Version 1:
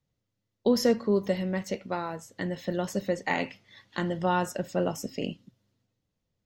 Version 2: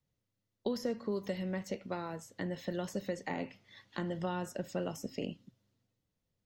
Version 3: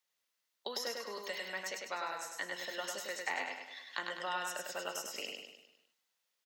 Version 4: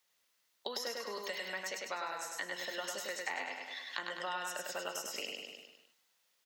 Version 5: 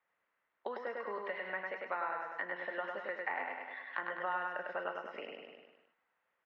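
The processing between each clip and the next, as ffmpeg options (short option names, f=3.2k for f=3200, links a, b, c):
-filter_complex "[0:a]acrossover=split=540|1500[a][b][c];[a]acompressor=threshold=-31dB:ratio=4[d];[b]acompressor=threshold=-40dB:ratio=4[e];[c]acompressor=threshold=-44dB:ratio=4[f];[d][e][f]amix=inputs=3:normalize=0,volume=-3.5dB"
-af "highpass=1.1k,aecho=1:1:101|202|303|404|505|606:0.668|0.327|0.16|0.0786|0.0385|0.0189,volume=6.5dB"
-af "acompressor=threshold=-50dB:ratio=2,volume=7.5dB"
-af "lowpass=f=1.9k:w=0.5412,lowpass=f=1.9k:w=1.3066,lowshelf=f=360:g=-6.5,volume=4dB"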